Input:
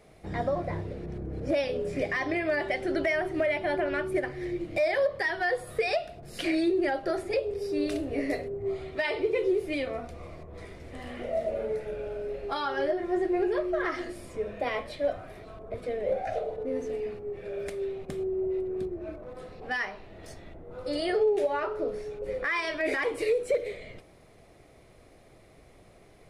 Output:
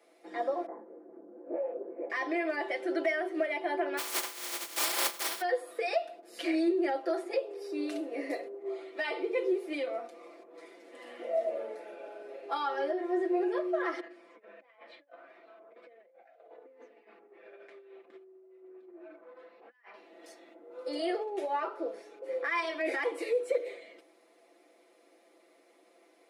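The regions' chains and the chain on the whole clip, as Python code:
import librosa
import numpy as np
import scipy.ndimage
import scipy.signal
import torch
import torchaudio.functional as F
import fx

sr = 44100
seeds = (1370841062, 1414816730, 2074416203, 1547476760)

y = fx.chain(x, sr, fx.lowpass(hz=1300.0, slope=24),
    fx.lpc_vocoder(seeds[0], excitation='whisper', order=10),
    fx.detune_double(cents=30), at=(0.66, 2.1))
y = fx.spec_flatten(y, sr, power=0.11, at=(3.97, 5.4), fade=0.02)
y = fx.comb(y, sr, ms=5.0, depth=0.31, at=(3.97, 5.4), fade=0.02)
y = fx.chain(y, sr, fx.lowpass(hz=2000.0, slope=12),
    fx.peak_eq(hz=350.0, db=-11.5, octaves=2.5),
    fx.over_compress(threshold_db=-45.0, ratio=-0.5), at=(14.0, 19.94))
y = scipy.signal.sosfilt(scipy.signal.butter(12, 240.0, 'highpass', fs=sr, output='sos'), y)
y = fx.dynamic_eq(y, sr, hz=840.0, q=0.76, threshold_db=-39.0, ratio=4.0, max_db=4)
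y = y + 0.76 * np.pad(y, (int(5.9 * sr / 1000.0), 0))[:len(y)]
y = F.gain(torch.from_numpy(y), -7.5).numpy()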